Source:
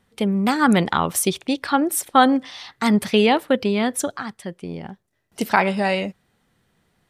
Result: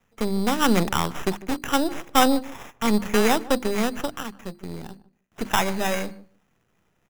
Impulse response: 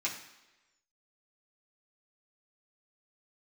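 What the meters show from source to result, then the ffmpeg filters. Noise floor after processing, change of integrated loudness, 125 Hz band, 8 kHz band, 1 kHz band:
-69 dBFS, -3.5 dB, -3.5 dB, -4.0 dB, -4.0 dB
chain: -filter_complex "[0:a]aeval=exprs='if(lt(val(0),0),0.251*val(0),val(0))':c=same,bandreject=f=50:t=h:w=6,bandreject=f=100:t=h:w=6,bandreject=f=150:t=h:w=6,bandreject=f=200:t=h:w=6,bandreject=f=250:t=h:w=6,bandreject=f=300:t=h:w=6,bandreject=f=350:t=h:w=6,acrossover=split=310|5000[a][b][c];[c]alimiter=limit=-20.5dB:level=0:latency=1:release=220[d];[a][b][d]amix=inputs=3:normalize=0,acrossover=split=6900[e][f];[f]acompressor=threshold=-43dB:ratio=4:attack=1:release=60[g];[e][g]amix=inputs=2:normalize=0,acrusher=samples=10:mix=1:aa=0.000001,asplit=2[h][i];[i]adelay=152,lowpass=f=910:p=1,volume=-17.5dB,asplit=2[j][k];[k]adelay=152,lowpass=f=910:p=1,volume=0.16[l];[j][l]amix=inputs=2:normalize=0[m];[h][m]amix=inputs=2:normalize=0"

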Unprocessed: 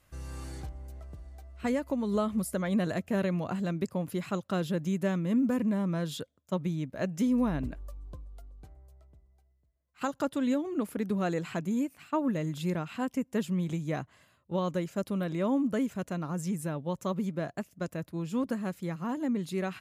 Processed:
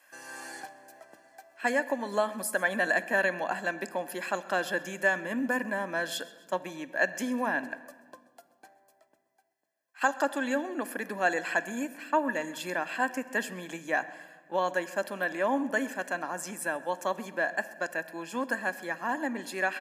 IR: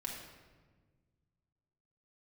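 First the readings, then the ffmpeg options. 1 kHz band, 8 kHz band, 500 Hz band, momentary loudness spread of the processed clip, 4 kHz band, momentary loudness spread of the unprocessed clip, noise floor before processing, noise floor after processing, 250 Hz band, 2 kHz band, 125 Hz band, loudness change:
+7.0 dB, +6.0 dB, +2.5 dB, 8 LU, +4.0 dB, 13 LU, -70 dBFS, -68 dBFS, -6.5 dB, +14.5 dB, -15.5 dB, +1.0 dB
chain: -filter_complex "[0:a]highpass=f=340:w=0.5412,highpass=f=340:w=1.3066,equalizer=f=1.7k:w=4.9:g=10.5,bandreject=f=3.7k:w=8.6,aecho=1:1:1.2:0.58,aecho=1:1:132|264|396|528:0.0794|0.0437|0.024|0.0132,asplit=2[a][b];[1:a]atrim=start_sample=2205[c];[b][c]afir=irnorm=-1:irlink=0,volume=-10.5dB[d];[a][d]amix=inputs=2:normalize=0,volume=3dB"

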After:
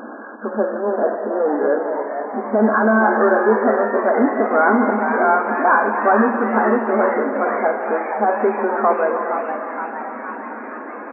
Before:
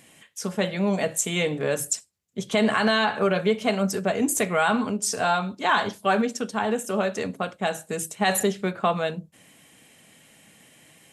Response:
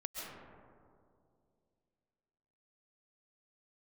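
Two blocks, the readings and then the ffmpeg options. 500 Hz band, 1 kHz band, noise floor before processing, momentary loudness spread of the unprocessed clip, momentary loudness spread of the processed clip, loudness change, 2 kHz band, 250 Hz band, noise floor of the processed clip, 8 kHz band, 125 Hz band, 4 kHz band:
+9.0 dB, +9.5 dB, -58 dBFS, 8 LU, 13 LU, +6.5 dB, +6.5 dB, +6.0 dB, -32 dBFS, under -40 dB, n/a, under -40 dB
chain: -filter_complex "[0:a]aeval=exprs='val(0)+0.5*0.0501*sgn(val(0))':c=same,asplit=2[a][b];[1:a]atrim=start_sample=2205,asetrate=66150,aresample=44100,adelay=146[c];[b][c]afir=irnorm=-1:irlink=0,volume=-4.5dB[d];[a][d]amix=inputs=2:normalize=0,afftfilt=real='re*between(b*sr/4096,210,1700)':imag='im*between(b*sr/4096,210,1700)':win_size=4096:overlap=0.75,asplit=9[e][f][g][h][i][j][k][l][m];[f]adelay=468,afreqshift=140,volume=-8.5dB[n];[g]adelay=936,afreqshift=280,volume=-12.7dB[o];[h]adelay=1404,afreqshift=420,volume=-16.8dB[p];[i]adelay=1872,afreqshift=560,volume=-21dB[q];[j]adelay=2340,afreqshift=700,volume=-25.1dB[r];[k]adelay=2808,afreqshift=840,volume=-29.3dB[s];[l]adelay=3276,afreqshift=980,volume=-33.4dB[t];[m]adelay=3744,afreqshift=1120,volume=-37.6dB[u];[e][n][o][p][q][r][s][t][u]amix=inputs=9:normalize=0,volume=5dB"

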